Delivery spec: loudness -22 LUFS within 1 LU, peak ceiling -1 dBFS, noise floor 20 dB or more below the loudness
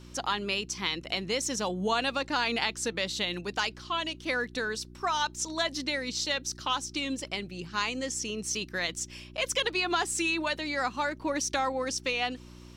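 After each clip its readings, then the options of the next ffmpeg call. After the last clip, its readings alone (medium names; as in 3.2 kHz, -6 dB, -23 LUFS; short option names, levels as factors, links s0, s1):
hum 60 Hz; highest harmonic 360 Hz; hum level -46 dBFS; loudness -30.5 LUFS; peak level -12.0 dBFS; loudness target -22.0 LUFS
-> -af "bandreject=f=60:t=h:w=4,bandreject=f=120:t=h:w=4,bandreject=f=180:t=h:w=4,bandreject=f=240:t=h:w=4,bandreject=f=300:t=h:w=4,bandreject=f=360:t=h:w=4"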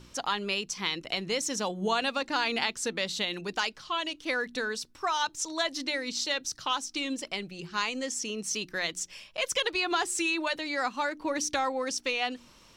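hum not found; loudness -30.5 LUFS; peak level -12.0 dBFS; loudness target -22.0 LUFS
-> -af "volume=2.66"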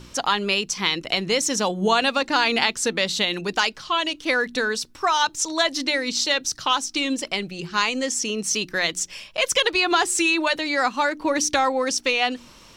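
loudness -22.0 LUFS; peak level -3.5 dBFS; noise floor -48 dBFS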